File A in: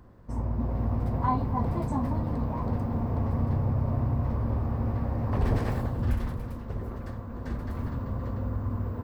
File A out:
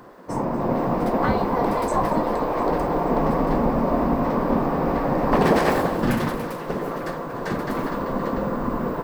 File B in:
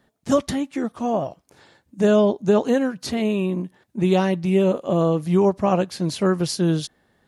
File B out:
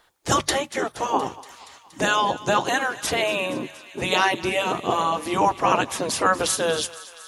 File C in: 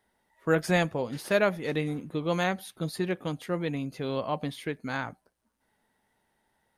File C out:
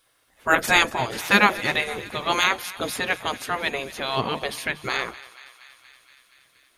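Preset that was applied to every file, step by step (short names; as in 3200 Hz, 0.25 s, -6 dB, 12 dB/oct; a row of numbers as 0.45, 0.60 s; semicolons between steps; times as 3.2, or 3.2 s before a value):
spectral gate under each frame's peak -10 dB weak; notches 50/100/150 Hz; thinning echo 0.236 s, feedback 77%, high-pass 840 Hz, level -17 dB; match loudness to -23 LUFS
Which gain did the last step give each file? +15.5, +9.5, +14.5 dB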